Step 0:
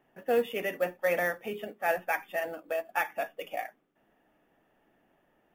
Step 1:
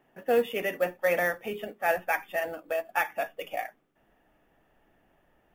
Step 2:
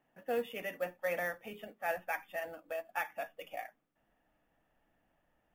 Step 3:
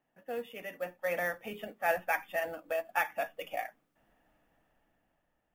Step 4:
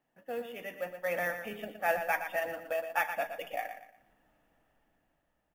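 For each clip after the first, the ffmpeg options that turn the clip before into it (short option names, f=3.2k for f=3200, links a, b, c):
-af "asubboost=boost=3:cutoff=120,volume=2.5dB"
-af "equalizer=f=390:t=o:w=0.23:g=-9.5,volume=-9dB"
-af "dynaudnorm=f=330:g=7:m=10dB,volume=-4dB"
-af "aecho=1:1:118|236|354|472:0.355|0.117|0.0386|0.0128"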